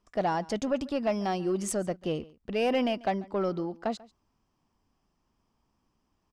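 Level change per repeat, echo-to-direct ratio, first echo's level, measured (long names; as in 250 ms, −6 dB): repeats not evenly spaced, −22.0 dB, −22.0 dB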